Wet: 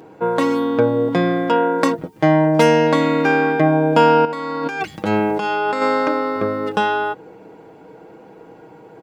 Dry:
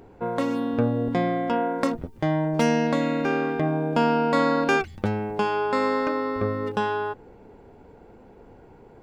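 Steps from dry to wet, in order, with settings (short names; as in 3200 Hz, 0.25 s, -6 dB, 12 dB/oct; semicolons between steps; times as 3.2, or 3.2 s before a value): Bessel high-pass 200 Hz, order 2; comb 6.3 ms, depth 60%; 4.25–5.82 negative-ratio compressor -29 dBFS, ratio -1; gain +7.5 dB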